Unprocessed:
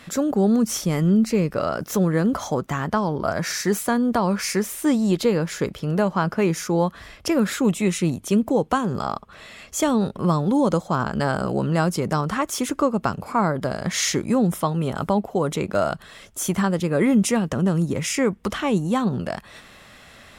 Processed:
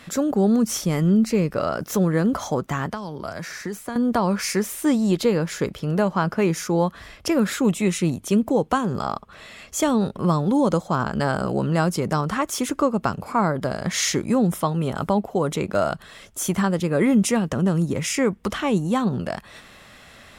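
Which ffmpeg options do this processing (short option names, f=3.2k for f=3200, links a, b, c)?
-filter_complex "[0:a]asettb=1/sr,asplit=3[a][b][c];[a]atrim=end=2.864[d];[b]atrim=start=2.86:end=3.96,asetpts=PTS-STARTPTS,afade=t=in:d=0.004:c=qsin,afade=t=out:st=1.096:d=0.004:c=qsin,acrossover=split=130|2300[e][f][g];[e]acompressor=threshold=-45dB:ratio=4[h];[f]acompressor=threshold=-30dB:ratio=4[i];[g]acompressor=threshold=-41dB:ratio=4[j];[h][i][j]amix=inputs=3:normalize=0[k];[c]atrim=start=3.956[l];[d][k]acrossfade=d=0.004:c1=hsin:c2=qsin[m];[m][l]acrossfade=d=0.004:c1=qsin:c2=hsin"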